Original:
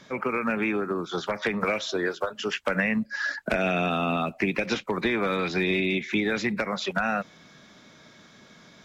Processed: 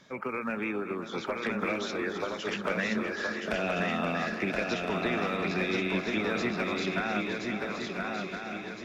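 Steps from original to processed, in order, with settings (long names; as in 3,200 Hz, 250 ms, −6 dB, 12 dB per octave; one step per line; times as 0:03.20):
feedback delay that plays each chunk backwards 262 ms, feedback 75%, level −11.5 dB
feedback echo with a long and a short gap by turns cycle 1,364 ms, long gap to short 3 to 1, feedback 43%, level −4 dB
level −6.5 dB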